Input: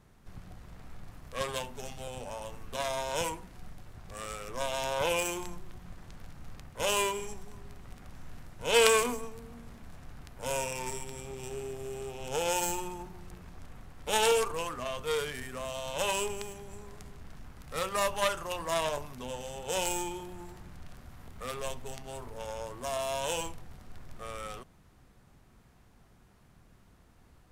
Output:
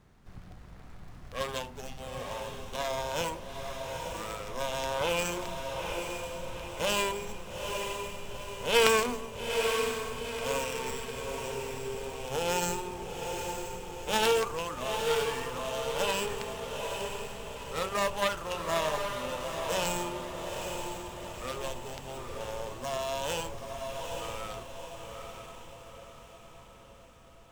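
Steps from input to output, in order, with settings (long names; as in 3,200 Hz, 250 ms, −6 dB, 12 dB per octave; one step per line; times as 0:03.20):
feedback delay with all-pass diffusion 876 ms, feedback 51%, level −4.5 dB
windowed peak hold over 3 samples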